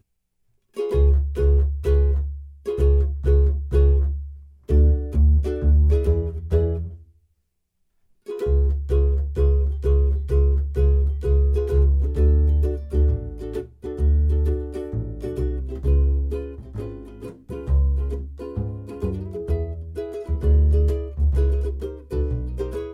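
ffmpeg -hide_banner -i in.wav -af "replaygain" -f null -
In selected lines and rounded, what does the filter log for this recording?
track_gain = +8.7 dB
track_peak = 0.276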